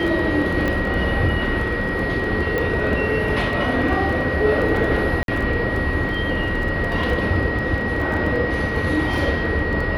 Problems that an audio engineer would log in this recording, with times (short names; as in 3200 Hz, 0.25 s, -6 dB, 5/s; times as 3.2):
crackle 12/s -26 dBFS
tone 1900 Hz -25 dBFS
0.68 pop -11 dBFS
2.58 pop
5.23–5.28 gap 52 ms